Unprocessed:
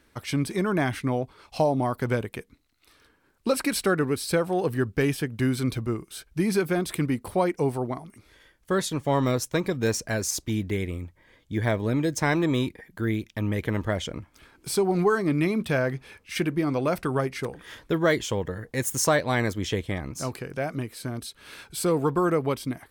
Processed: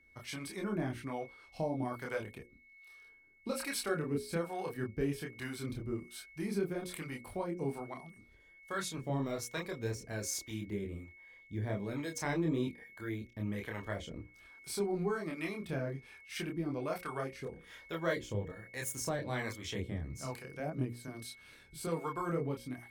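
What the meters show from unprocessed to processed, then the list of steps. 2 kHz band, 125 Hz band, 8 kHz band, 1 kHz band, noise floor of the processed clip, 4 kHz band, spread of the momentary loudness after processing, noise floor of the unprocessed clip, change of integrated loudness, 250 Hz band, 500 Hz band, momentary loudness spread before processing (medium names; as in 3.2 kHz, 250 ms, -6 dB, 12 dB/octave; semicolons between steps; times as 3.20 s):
-11.5 dB, -11.5 dB, -11.0 dB, -12.5 dB, -61 dBFS, -11.0 dB, 12 LU, -64 dBFS, -12.0 dB, -12.0 dB, -12.0 dB, 10 LU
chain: chorus voices 6, 1 Hz, delay 27 ms, depth 3 ms; whistle 2.2 kHz -49 dBFS; harmonic tremolo 1.2 Hz, depth 70%, crossover 520 Hz; hum notches 60/120/180/240/300/360/420/480/540 Hz; trim -5 dB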